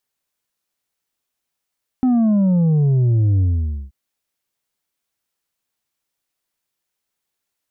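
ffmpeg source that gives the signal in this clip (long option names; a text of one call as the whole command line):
ffmpeg -f lavfi -i "aevalsrc='0.224*clip((1.88-t)/0.51,0,1)*tanh(1.68*sin(2*PI*260*1.88/log(65/260)*(exp(log(65/260)*t/1.88)-1)))/tanh(1.68)':duration=1.88:sample_rate=44100" out.wav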